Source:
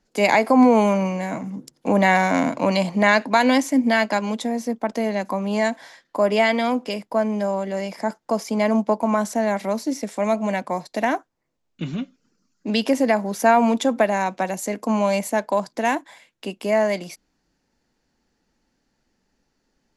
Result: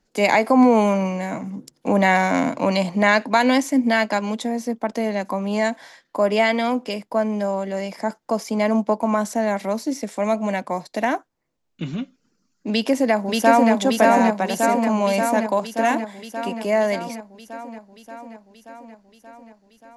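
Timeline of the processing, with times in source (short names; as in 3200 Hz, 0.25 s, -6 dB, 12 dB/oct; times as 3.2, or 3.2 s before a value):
12.7–13.72 echo throw 0.58 s, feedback 70%, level -1.5 dB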